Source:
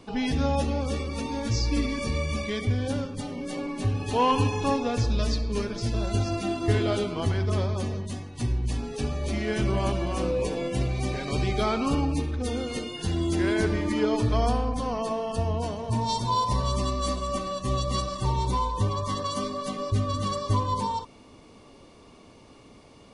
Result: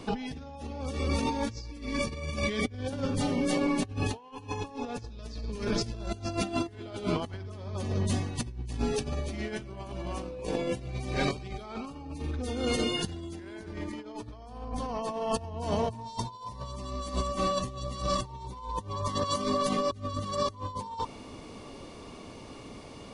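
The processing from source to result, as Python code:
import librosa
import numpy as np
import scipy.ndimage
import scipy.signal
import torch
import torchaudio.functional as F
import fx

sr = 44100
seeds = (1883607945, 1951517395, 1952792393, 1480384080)

y = fx.dynamic_eq(x, sr, hz=880.0, q=4.2, threshold_db=-41.0, ratio=4.0, max_db=4)
y = fx.over_compress(y, sr, threshold_db=-32.0, ratio=-0.5)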